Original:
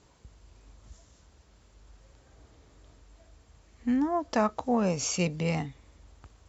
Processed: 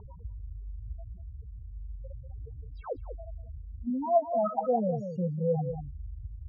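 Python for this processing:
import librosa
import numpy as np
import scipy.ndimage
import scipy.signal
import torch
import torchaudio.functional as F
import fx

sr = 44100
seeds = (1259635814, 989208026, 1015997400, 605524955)

p1 = fx.spec_paint(x, sr, seeds[0], shape='fall', start_s=2.76, length_s=0.2, low_hz=250.0, high_hz=6000.0, level_db=-43.0)
p2 = fx.highpass(p1, sr, hz=130.0, slope=12, at=(3.9, 5.57))
p3 = 10.0 ** (-25.5 / 20.0) * np.tanh(p2 / 10.0 ** (-25.5 / 20.0))
p4 = p2 + F.gain(torch.from_numpy(p3), -12.0).numpy()
p5 = fx.spec_topn(p4, sr, count=4)
p6 = fx.filter_lfo_lowpass(p5, sr, shape='sine', hz=2.3, low_hz=500.0, high_hz=1700.0, q=7.3)
p7 = fx.fixed_phaser(p6, sr, hz=770.0, stages=4)
p8 = p7 + fx.echo_single(p7, sr, ms=192, db=-16.0, dry=0)
p9 = fx.env_flatten(p8, sr, amount_pct=50)
y = F.gain(torch.from_numpy(p9), -7.0).numpy()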